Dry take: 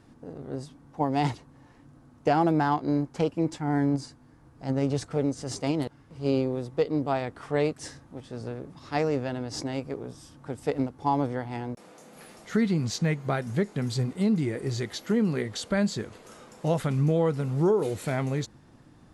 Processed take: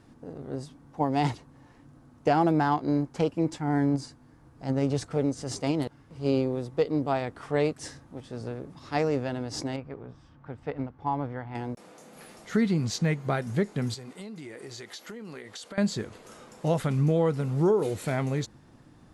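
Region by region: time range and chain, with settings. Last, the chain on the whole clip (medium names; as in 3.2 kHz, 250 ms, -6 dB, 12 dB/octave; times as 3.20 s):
9.76–11.55 s: low-pass 2.1 kHz + peaking EQ 370 Hz -7 dB 2.3 oct
13.94–15.78 s: high-pass 610 Hz 6 dB/octave + compression 10:1, threshold -37 dBFS
whole clip: none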